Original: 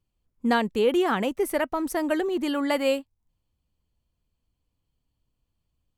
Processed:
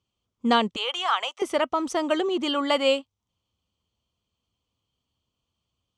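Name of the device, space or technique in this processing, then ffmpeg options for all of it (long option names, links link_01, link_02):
car door speaker: -filter_complex "[0:a]asettb=1/sr,asplit=3[link_01][link_02][link_03];[link_01]atrim=end=0.764[link_04];[link_02]atrim=start=0.76:end=1.42,asetpts=PTS-STARTPTS,afade=type=in:duration=0.004:curve=qsin,afade=type=out:start_time=0.656:duration=0.004:curve=qsin,highpass=frequency=740:width=0.5412,highpass=frequency=740:width=1.3066[link_05];[link_03]atrim=start=1.416[link_06];[link_04][link_05]acrossfade=duration=0.004:curve1=hsin:curve2=qsin[link_07];[link_07][link_06]acrossfade=duration=0.004:curve1=qsin:curve2=hsin,highpass=99,equalizer=frequency=150:width_type=q:width=4:gain=-7,equalizer=frequency=290:width_type=q:width=4:gain=-4,equalizer=frequency=1200:width_type=q:width=4:gain=6,equalizer=frequency=1700:width_type=q:width=4:gain=-7,equalizer=frequency=3200:width_type=q:width=4:gain=9,equalizer=frequency=6000:width_type=q:width=4:gain=5,lowpass=frequency=8000:width=0.5412,lowpass=frequency=8000:width=1.3066,volume=2dB"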